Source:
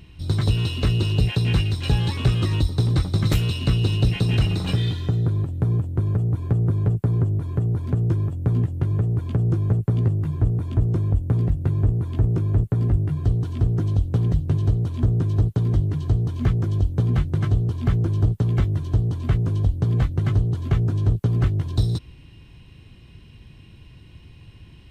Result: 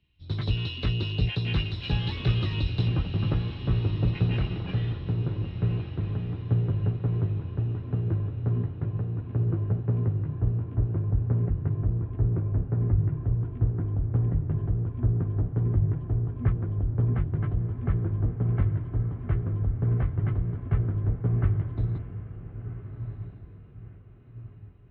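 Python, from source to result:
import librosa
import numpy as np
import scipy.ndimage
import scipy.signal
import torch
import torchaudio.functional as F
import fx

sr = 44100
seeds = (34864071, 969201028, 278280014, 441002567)

y = fx.lowpass(x, sr, hz=fx.steps((0.0, 3700.0), (2.88, 1400.0), (4.15, 2300.0)), slope=24)
y = fx.echo_diffused(y, sr, ms=1432, feedback_pct=55, wet_db=-7)
y = fx.band_widen(y, sr, depth_pct=70)
y = y * 10.0 ** (-6.5 / 20.0)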